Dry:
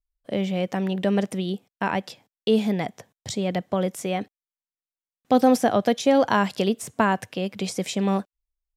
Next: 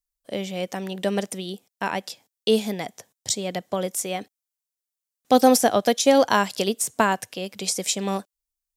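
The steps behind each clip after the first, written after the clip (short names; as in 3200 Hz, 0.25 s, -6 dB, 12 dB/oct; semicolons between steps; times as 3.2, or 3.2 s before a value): tone controls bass -6 dB, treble +12 dB; upward expander 1.5:1, over -28 dBFS; gain +3.5 dB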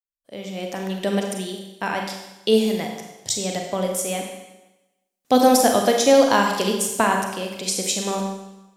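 opening faded in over 0.80 s; Schroeder reverb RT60 1 s, combs from 32 ms, DRR 2 dB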